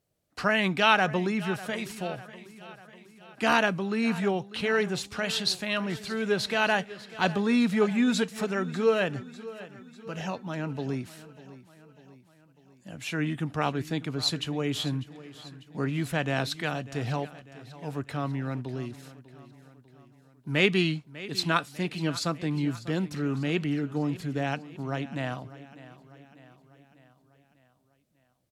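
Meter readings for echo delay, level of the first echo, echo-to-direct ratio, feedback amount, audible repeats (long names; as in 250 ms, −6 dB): 597 ms, −17.0 dB, −15.5 dB, 55%, 4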